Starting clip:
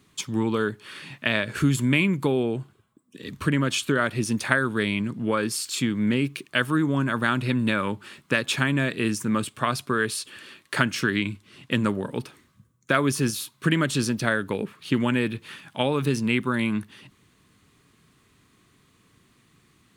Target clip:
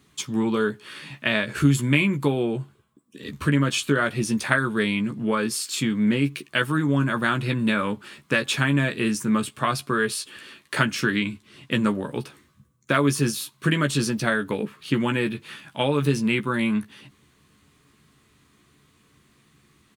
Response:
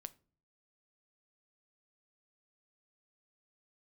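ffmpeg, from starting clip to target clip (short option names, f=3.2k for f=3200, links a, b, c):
-filter_complex "[0:a]asplit=2[a][b];[b]adelay=14,volume=-6dB[c];[a][c]amix=inputs=2:normalize=0"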